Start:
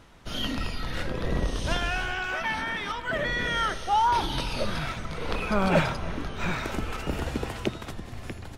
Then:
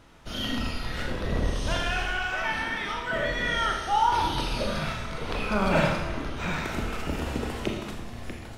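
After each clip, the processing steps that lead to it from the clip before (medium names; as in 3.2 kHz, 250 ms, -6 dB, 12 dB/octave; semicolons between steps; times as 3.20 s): reverberation RT60 0.95 s, pre-delay 26 ms, DRR 1 dB; trim -2 dB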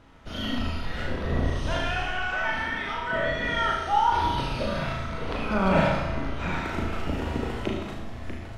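treble shelf 4.7 kHz -11.5 dB; on a send: flutter echo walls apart 6.3 m, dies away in 0.41 s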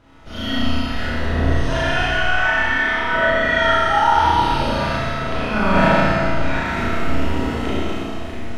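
Schroeder reverb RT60 1.8 s, combs from 26 ms, DRR -2.5 dB; dynamic bell 1.7 kHz, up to +7 dB, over -40 dBFS, Q 6.5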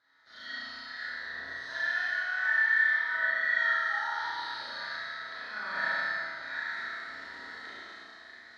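two resonant band-passes 2.7 kHz, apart 1.2 oct; trim -3.5 dB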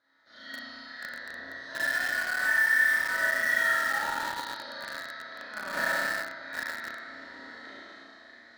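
in parallel at -5 dB: bit crusher 5-bit; on the sum: small resonant body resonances 270/550 Hz, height 10 dB, ringing for 25 ms; trim -2.5 dB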